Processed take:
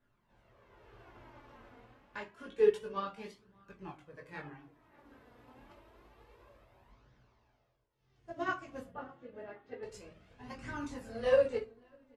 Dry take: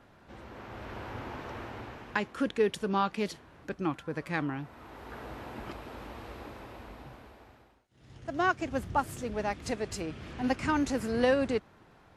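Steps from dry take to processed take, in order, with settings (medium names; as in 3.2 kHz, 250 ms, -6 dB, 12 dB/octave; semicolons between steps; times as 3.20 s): 6.90–8.17 s: CVSD coder 32 kbps; 8.85–9.83 s: cabinet simulation 140–3000 Hz, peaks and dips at 480 Hz +4 dB, 710 Hz -4 dB, 1 kHz -8 dB, 2.4 kHz -9 dB; echo from a far wall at 100 m, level -16 dB; chorus voices 4, 0.75 Hz, delay 20 ms, depth 4 ms; reverberation RT60 0.50 s, pre-delay 5 ms, DRR 1 dB; flange 0.28 Hz, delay 0.5 ms, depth 3.7 ms, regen +34%; upward expansion 1.5:1, over -49 dBFS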